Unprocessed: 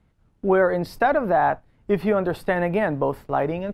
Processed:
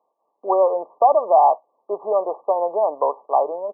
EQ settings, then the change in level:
high-pass filter 550 Hz 24 dB per octave
linear-phase brick-wall low-pass 1,200 Hz
+6.5 dB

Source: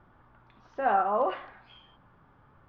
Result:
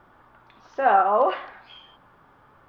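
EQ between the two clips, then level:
bass and treble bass −9 dB, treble +5 dB
+7.0 dB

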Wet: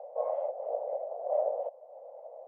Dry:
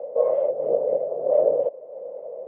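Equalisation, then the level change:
four-pole ladder high-pass 690 Hz, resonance 65%
0.0 dB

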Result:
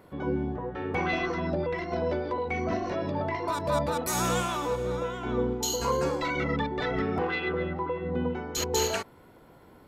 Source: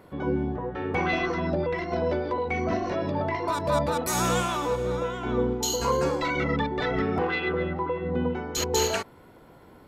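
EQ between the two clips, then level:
high-shelf EQ 11,000 Hz +3 dB
−2.5 dB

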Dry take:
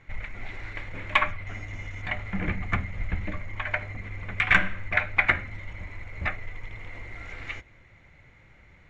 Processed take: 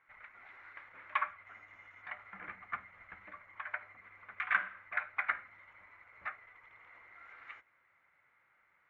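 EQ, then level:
resonant band-pass 1,300 Hz, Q 2.5
−5.5 dB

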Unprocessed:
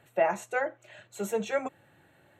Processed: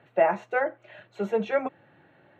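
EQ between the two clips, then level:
high-pass filter 130 Hz
high-frequency loss of the air 290 metres
+5.0 dB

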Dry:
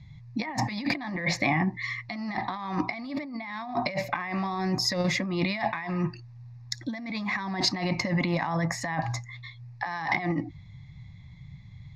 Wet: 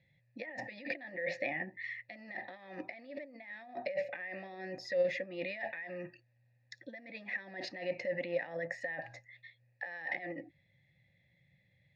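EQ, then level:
formant filter e
+2.5 dB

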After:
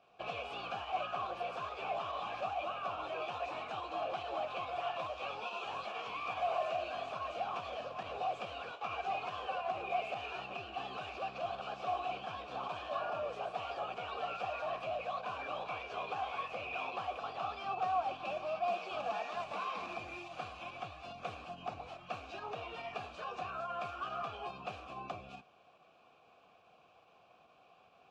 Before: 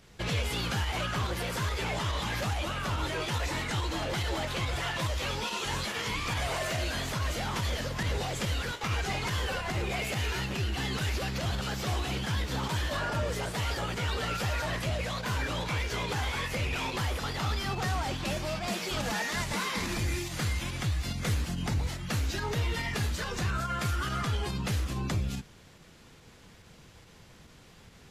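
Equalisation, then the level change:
formant filter a
high-frequency loss of the air 51 metres
notch filter 2,100 Hz, Q 17
+6.0 dB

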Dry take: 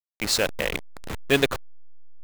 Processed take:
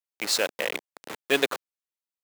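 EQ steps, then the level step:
high-pass filter 330 Hz 12 dB per octave
−1.5 dB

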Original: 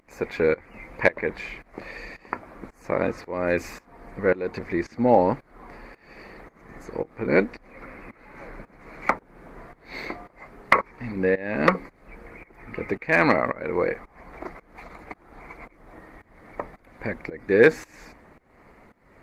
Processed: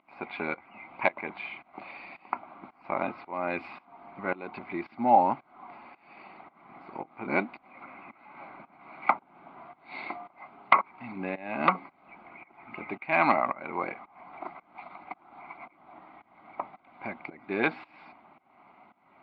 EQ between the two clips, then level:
loudspeaker in its box 260–3,700 Hz, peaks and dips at 500 Hz +6 dB, 740 Hz +7 dB, 2,000 Hz +5 dB
phaser with its sweep stopped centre 1,800 Hz, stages 6
−1.0 dB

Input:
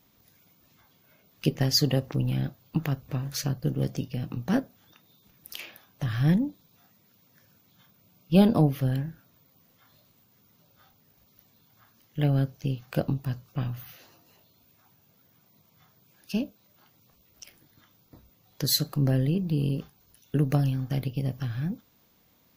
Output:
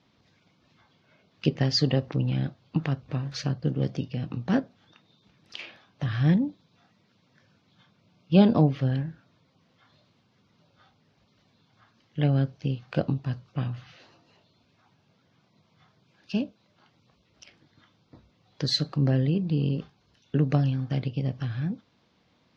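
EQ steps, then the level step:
high-pass filter 69 Hz
low-pass filter 4,900 Hz 24 dB per octave
+1.0 dB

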